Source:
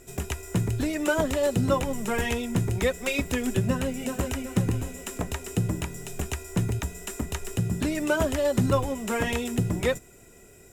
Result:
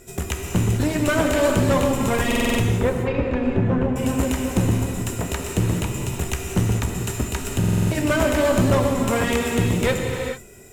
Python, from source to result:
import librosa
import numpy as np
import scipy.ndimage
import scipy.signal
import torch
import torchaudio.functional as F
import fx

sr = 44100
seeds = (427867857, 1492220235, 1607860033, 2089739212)

y = fx.lowpass(x, sr, hz=1300.0, slope=12, at=(2.62, 3.96))
y = fx.tube_stage(y, sr, drive_db=21.0, bias=0.7)
y = fx.rev_gated(y, sr, seeds[0], gate_ms=470, shape='flat', drr_db=1.0)
y = fx.buffer_glitch(y, sr, at_s=(2.27, 7.59), block=2048, repeats=6)
y = F.gain(torch.from_numpy(y), 7.5).numpy()